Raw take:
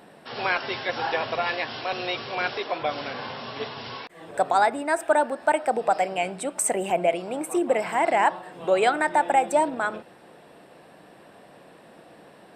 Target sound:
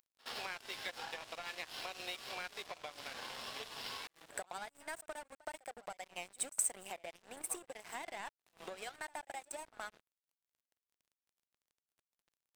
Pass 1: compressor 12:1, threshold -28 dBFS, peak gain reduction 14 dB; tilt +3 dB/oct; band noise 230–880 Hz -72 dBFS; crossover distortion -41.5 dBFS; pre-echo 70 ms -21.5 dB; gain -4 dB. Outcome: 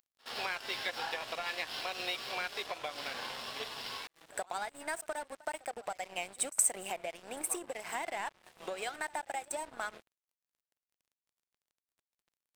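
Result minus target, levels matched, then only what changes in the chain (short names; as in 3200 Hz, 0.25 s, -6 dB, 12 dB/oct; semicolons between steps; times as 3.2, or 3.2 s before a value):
compressor: peak gain reduction -5.5 dB
change: compressor 12:1, threshold -34 dBFS, peak gain reduction 19.5 dB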